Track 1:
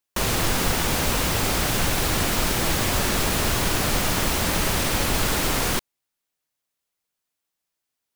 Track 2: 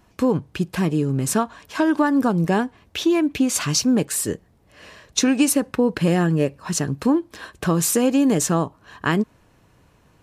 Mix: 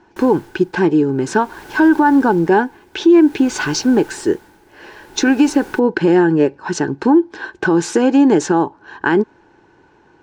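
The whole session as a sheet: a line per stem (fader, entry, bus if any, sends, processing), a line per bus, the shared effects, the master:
1.07 s -16.5 dB -> 1.60 s -8 dB, 0.00 s, no send, tremolo 0.53 Hz, depth 87%; auto duck -12 dB, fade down 0.85 s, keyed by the second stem
0.0 dB, 0.00 s, no send, low-pass 6.5 kHz 24 dB/octave; bass shelf 240 Hz -6 dB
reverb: none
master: small resonant body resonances 360/850/1500 Hz, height 17 dB, ringing for 30 ms; peak limiter -4 dBFS, peak gain reduction 6.5 dB

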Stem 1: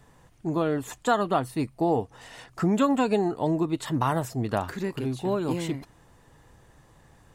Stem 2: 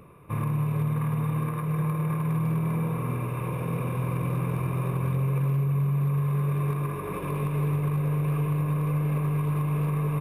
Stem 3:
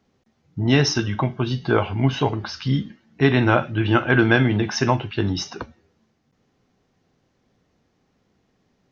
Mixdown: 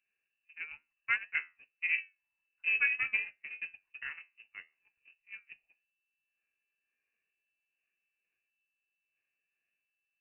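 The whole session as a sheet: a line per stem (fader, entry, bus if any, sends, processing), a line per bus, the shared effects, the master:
-0.5 dB, 0.00 s, no send, low-pass that closes with the level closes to 1.4 kHz, closed at -18.5 dBFS
-9.0 dB, 0.00 s, no send, chorus 0.74 Hz, delay 16 ms, depth 3.5 ms; level flattener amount 100%
-17.5 dB, 0.00 s, no send, auto duck -13 dB, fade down 1.90 s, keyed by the first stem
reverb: none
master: gate -21 dBFS, range -48 dB; flange 1.8 Hz, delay 9.2 ms, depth 4 ms, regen +72%; frequency inversion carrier 2.8 kHz

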